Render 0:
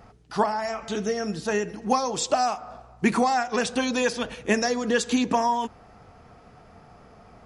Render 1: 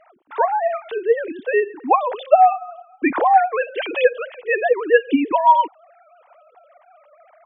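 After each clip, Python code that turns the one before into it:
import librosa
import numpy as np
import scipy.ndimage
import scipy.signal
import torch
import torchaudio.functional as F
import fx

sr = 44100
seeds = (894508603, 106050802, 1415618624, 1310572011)

y = fx.sine_speech(x, sr)
y = y * 10.0 ** (7.0 / 20.0)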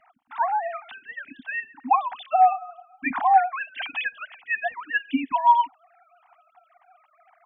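y = scipy.signal.sosfilt(scipy.signal.ellip(3, 1.0, 40, [260.0, 740.0], 'bandstop', fs=sr, output='sos'), x)
y = y * 10.0 ** (-3.0 / 20.0)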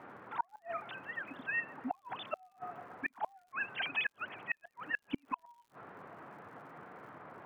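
y = fx.dmg_noise_band(x, sr, seeds[0], low_hz=110.0, high_hz=1500.0, level_db=-47.0)
y = fx.gate_flip(y, sr, shuts_db=-17.0, range_db=-39)
y = fx.dmg_crackle(y, sr, seeds[1], per_s=110.0, level_db=-53.0)
y = y * 10.0 ** (-5.0 / 20.0)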